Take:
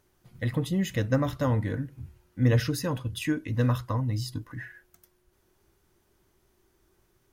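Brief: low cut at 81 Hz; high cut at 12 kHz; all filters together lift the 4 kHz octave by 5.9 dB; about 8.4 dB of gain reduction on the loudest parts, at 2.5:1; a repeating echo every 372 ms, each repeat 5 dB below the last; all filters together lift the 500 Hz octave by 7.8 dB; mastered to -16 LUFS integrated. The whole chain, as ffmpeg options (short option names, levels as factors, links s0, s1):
-af "highpass=81,lowpass=12000,equalizer=f=500:t=o:g=8.5,equalizer=f=4000:t=o:g=7.5,acompressor=threshold=0.0398:ratio=2.5,aecho=1:1:372|744|1116|1488|1860|2232|2604:0.562|0.315|0.176|0.0988|0.0553|0.031|0.0173,volume=5.31"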